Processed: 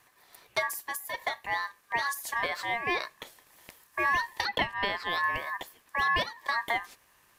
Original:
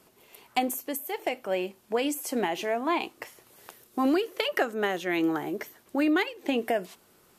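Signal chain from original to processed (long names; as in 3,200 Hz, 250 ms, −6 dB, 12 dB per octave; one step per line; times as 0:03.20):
0:04.45–0:05.05: high shelf with overshoot 4,400 Hz −7.5 dB, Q 1.5
ring modulation 1,400 Hz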